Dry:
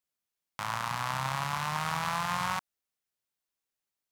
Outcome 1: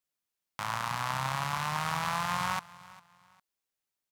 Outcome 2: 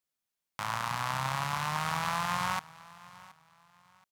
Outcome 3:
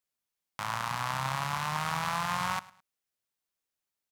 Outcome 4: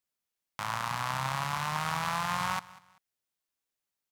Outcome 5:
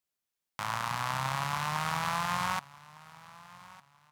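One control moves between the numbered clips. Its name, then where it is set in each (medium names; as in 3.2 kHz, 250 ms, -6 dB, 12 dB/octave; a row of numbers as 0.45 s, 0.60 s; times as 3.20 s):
feedback delay, time: 403 ms, 724 ms, 106 ms, 194 ms, 1207 ms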